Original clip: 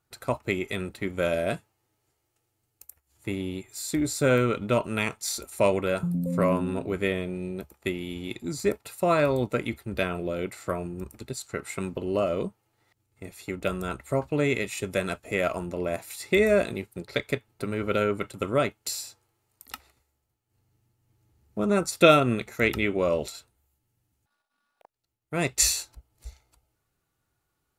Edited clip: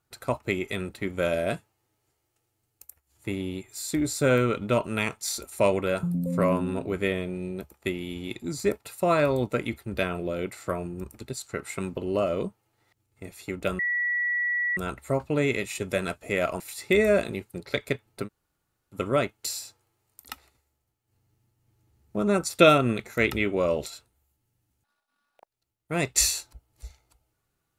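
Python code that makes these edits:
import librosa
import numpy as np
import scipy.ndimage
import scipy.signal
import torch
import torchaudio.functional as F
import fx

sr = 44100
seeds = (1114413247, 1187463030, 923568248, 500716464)

y = fx.edit(x, sr, fx.insert_tone(at_s=13.79, length_s=0.98, hz=1940.0, db=-23.5),
    fx.cut(start_s=15.62, length_s=0.4),
    fx.room_tone_fill(start_s=17.68, length_s=0.68, crossfade_s=0.06), tone=tone)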